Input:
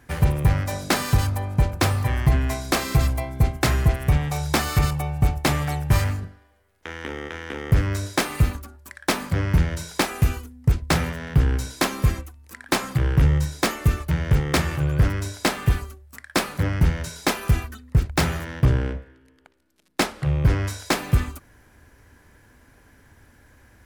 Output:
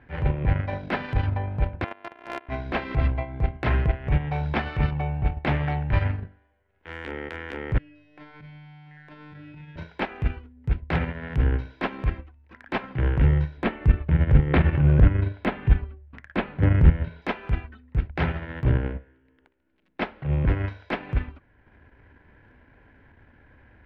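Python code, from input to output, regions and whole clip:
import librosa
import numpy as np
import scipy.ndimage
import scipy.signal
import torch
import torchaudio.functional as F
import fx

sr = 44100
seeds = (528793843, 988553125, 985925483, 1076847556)

y = fx.chain(x, sr, fx.sample_sort(block=128),
    fx.bandpass_edges(low_hz=590.0, high_hz=2800.0),
    fx.level_steps(step_db=15), at=(1.84, 2.49))
y = fx.chain(y, sr, fx.comb_fb(f0_hz=150.0, decay_s=1.5, harmonics='all', damping=0.0, mix_pct=100),
    fx.band_squash(depth_pct=100), at=(7.78, 9.76))
y = fx.chain(y, sr, fx.lowpass(hz=4200.0, slope=24),
    fx.low_shelf(hz=350.0, db=7.5), at=(13.57, 17.22))
y = scipy.signal.sosfilt(scipy.signal.cheby2(4, 60, 8600.0, 'lowpass', fs=sr, output='sos'), y)
y = fx.notch(y, sr, hz=1200.0, q=8.5)
y = fx.transient(y, sr, attack_db=-12, sustain_db=-8)
y = F.gain(torch.from_numpy(y), 1.0).numpy()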